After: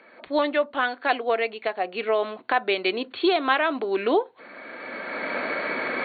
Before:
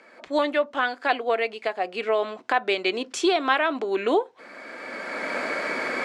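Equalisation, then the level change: brick-wall FIR low-pass 4500 Hz; bell 83 Hz +3 dB 2.1 oct; 0.0 dB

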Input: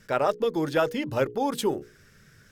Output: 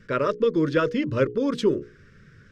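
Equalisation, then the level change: dynamic EQ 5600 Hz, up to +6 dB, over -51 dBFS, Q 1.5; Butterworth band-stop 770 Hz, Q 1.5; tape spacing loss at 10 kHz 24 dB; +6.0 dB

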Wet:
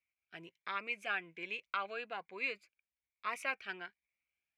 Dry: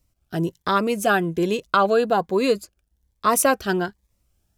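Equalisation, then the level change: band-pass 2300 Hz, Q 11; tilt -1.5 dB/oct; +5.5 dB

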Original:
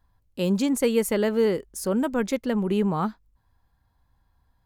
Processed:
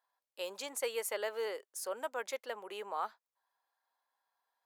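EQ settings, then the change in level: HPF 550 Hz 24 dB/oct; -7.5 dB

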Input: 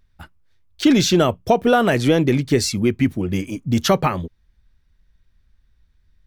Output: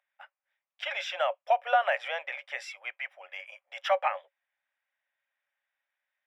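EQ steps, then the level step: polynomial smoothing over 25 samples; rippled Chebyshev high-pass 540 Hz, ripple 6 dB; -3.5 dB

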